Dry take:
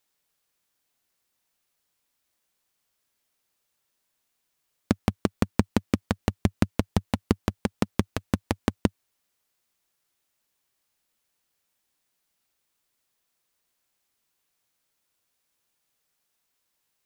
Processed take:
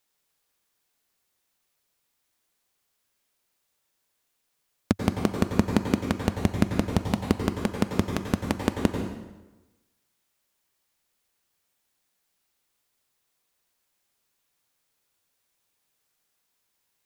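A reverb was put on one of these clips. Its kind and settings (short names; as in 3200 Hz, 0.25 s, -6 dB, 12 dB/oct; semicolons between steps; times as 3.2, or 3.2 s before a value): plate-style reverb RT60 1.1 s, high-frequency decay 0.8×, pre-delay 80 ms, DRR 3.5 dB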